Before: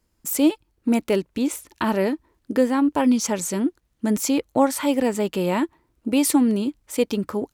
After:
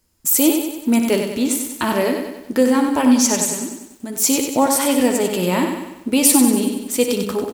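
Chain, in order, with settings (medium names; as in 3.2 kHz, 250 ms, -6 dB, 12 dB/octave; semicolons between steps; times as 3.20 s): 3.43–4.18 s: compression 4:1, threshold -30 dBFS, peak gain reduction 11 dB; treble shelf 3.6 kHz +9 dB; on a send: early reflections 12 ms -9.5 dB, 60 ms -11 dB; on the sum: bit-crushed delay 95 ms, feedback 55%, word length 8-bit, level -6 dB; trim +1.5 dB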